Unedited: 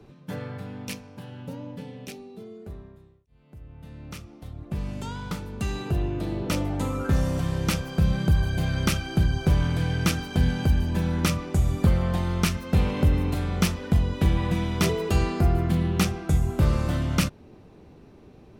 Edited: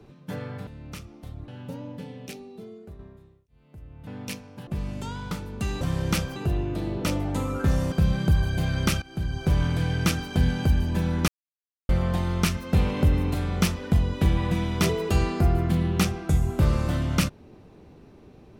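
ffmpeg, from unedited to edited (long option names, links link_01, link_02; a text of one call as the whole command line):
ffmpeg -i in.wav -filter_complex "[0:a]asplit=12[link_01][link_02][link_03][link_04][link_05][link_06][link_07][link_08][link_09][link_10][link_11][link_12];[link_01]atrim=end=0.672[link_13];[link_02]atrim=start=3.858:end=4.672[link_14];[link_03]atrim=start=1.268:end=2.78,asetpts=PTS-STARTPTS,afade=type=out:start_time=1.202:duration=0.31:silence=0.473151[link_15];[link_04]atrim=start=2.78:end=3.862,asetpts=PTS-STARTPTS,afade=type=in:duration=0.004:curve=hsin:silence=0.473151[link_16];[link_05]atrim=start=0.668:end=1.272[link_17];[link_06]atrim=start=4.668:end=5.812[link_18];[link_07]atrim=start=7.368:end=7.922[link_19];[link_08]atrim=start=5.808:end=7.372[link_20];[link_09]atrim=start=7.918:end=9.02,asetpts=PTS-STARTPTS,afade=type=out:start_time=1.098:duration=0.004:curve=hsin:silence=0.141254[link_21];[link_10]atrim=start=9.02:end=11.28,asetpts=PTS-STARTPTS,afade=type=in:duration=0.6:silence=0.141254,afade=type=out:start_time=2.256:duration=0.004:curve=hsin[link_22];[link_11]atrim=start=11.28:end=11.89,asetpts=PTS-STARTPTS,volume=0[link_23];[link_12]atrim=start=11.89,asetpts=PTS-STARTPTS,afade=type=in:duration=0.004:curve=hsin[link_24];[link_13][link_14]acrossfade=duration=0.004:curve1=hsin:curve2=hsin[link_25];[link_15][link_16]concat=n=2:v=0:a=1[link_26];[link_25][link_26]acrossfade=duration=0.004:curve1=hsin:curve2=hsin[link_27];[link_27][link_17]acrossfade=duration=0.004:curve1=hsin:curve2=hsin[link_28];[link_28][link_18]acrossfade=duration=0.004:curve1=hsin:curve2=hsin[link_29];[link_29][link_19]acrossfade=duration=0.004:curve1=hsin:curve2=hsin[link_30];[link_30][link_20]acrossfade=duration=0.004:curve1=hsin:curve2=hsin[link_31];[link_21][link_22][link_23][link_24]concat=n=4:v=0:a=1[link_32];[link_31][link_32]acrossfade=duration=0.004:curve1=hsin:curve2=hsin" out.wav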